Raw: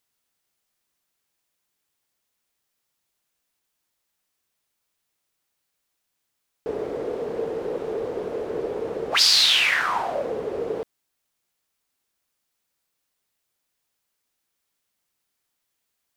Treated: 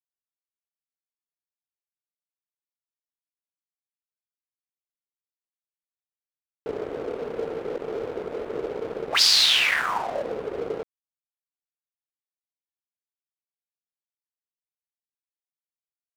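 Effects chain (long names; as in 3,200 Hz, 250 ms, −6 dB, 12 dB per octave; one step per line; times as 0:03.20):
adaptive Wiener filter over 9 samples
dead-zone distortion −38.5 dBFS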